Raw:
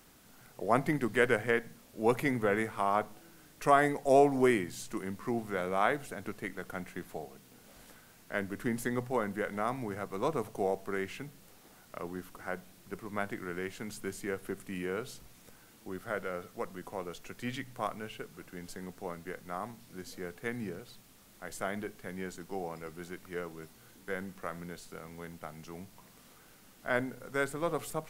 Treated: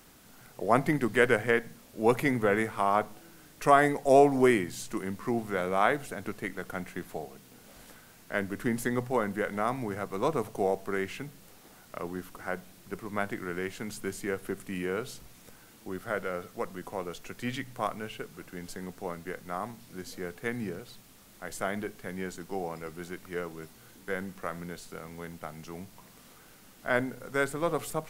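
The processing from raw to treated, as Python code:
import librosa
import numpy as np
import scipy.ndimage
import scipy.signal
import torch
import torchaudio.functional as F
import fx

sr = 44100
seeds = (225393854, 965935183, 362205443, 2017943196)

y = x * 10.0 ** (3.5 / 20.0)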